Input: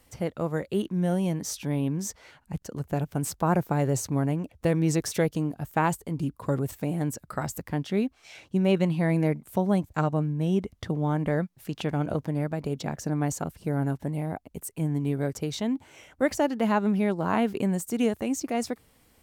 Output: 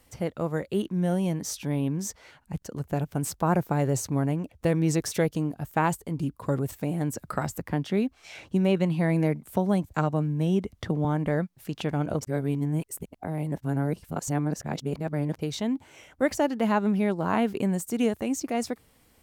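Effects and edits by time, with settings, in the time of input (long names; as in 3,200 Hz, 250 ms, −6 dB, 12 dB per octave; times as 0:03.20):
0:07.16–0:11.05: multiband upward and downward compressor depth 40%
0:12.21–0:15.39: reverse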